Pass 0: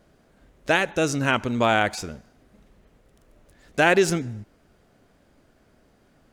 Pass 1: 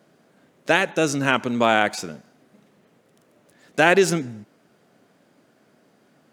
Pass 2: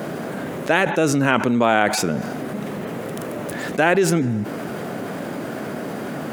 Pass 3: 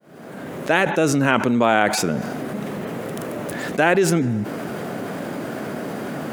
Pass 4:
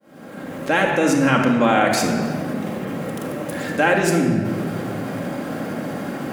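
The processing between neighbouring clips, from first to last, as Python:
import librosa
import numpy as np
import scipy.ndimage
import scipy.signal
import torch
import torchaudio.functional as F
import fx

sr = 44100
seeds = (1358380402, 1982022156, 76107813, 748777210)

y1 = scipy.signal.sosfilt(scipy.signal.butter(4, 140.0, 'highpass', fs=sr, output='sos'), x)
y1 = y1 * librosa.db_to_amplitude(2.0)
y2 = fx.peak_eq(y1, sr, hz=5200.0, db=-8.0, octaves=2.0)
y2 = fx.env_flatten(y2, sr, amount_pct=70)
y2 = y2 * librosa.db_to_amplitude(-2.0)
y3 = fx.fade_in_head(y2, sr, length_s=0.75)
y4 = fx.room_shoebox(y3, sr, seeds[0], volume_m3=2900.0, walls='mixed', distance_m=2.2)
y4 = y4 * librosa.db_to_amplitude(-2.5)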